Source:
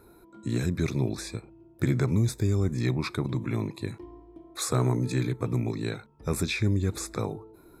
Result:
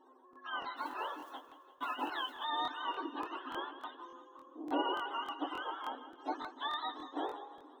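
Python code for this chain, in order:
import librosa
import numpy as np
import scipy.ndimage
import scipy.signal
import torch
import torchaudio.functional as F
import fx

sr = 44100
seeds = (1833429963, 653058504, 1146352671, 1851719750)

p1 = fx.octave_mirror(x, sr, pivot_hz=600.0)
p2 = np.convolve(p1, np.full(19, 1.0 / 19))[:len(p1)]
p3 = fx.mod_noise(p2, sr, seeds[0], snr_db=32, at=(0.76, 2.44))
p4 = fx.brickwall_highpass(p3, sr, low_hz=260.0)
p5 = p4 + fx.echo_split(p4, sr, split_hz=330.0, low_ms=670, high_ms=170, feedback_pct=52, wet_db=-13, dry=0)
y = fx.buffer_crackle(p5, sr, first_s=0.31, period_s=0.29, block=1024, kind='repeat')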